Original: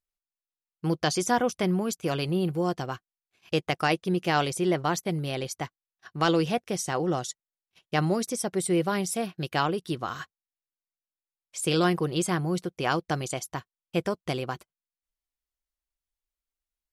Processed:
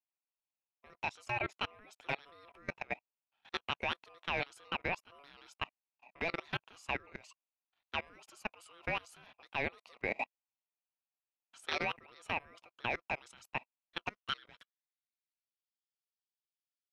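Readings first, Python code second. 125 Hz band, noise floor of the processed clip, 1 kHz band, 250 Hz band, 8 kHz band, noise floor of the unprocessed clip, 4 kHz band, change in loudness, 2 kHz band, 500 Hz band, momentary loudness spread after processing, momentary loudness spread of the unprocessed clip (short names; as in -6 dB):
-20.5 dB, under -85 dBFS, -11.5 dB, -22.0 dB, -25.5 dB, under -85 dBFS, -9.0 dB, -11.5 dB, -4.5 dB, -16.0 dB, 10 LU, 12 LU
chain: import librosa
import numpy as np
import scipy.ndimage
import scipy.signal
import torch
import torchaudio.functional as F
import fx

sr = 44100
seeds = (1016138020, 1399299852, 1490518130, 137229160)

y = fx.filter_sweep_bandpass(x, sr, from_hz=1700.0, to_hz=4000.0, start_s=13.86, end_s=15.62, q=5.1)
y = y * np.sin(2.0 * np.pi * 850.0 * np.arange(len(y)) / sr)
y = fx.level_steps(y, sr, step_db=24)
y = y * 10.0 ** (14.0 / 20.0)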